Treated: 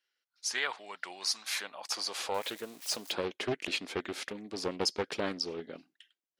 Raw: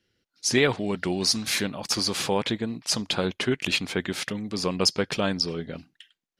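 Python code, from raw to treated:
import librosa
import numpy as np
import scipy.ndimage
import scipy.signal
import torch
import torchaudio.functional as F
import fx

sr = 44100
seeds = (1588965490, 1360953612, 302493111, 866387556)

y = fx.crossing_spikes(x, sr, level_db=-28.5, at=(2.34, 3.12))
y = fx.filter_sweep_highpass(y, sr, from_hz=960.0, to_hz=330.0, start_s=1.31, end_s=3.47, q=1.3)
y = fx.doppler_dist(y, sr, depth_ms=0.48)
y = y * 10.0 ** (-8.5 / 20.0)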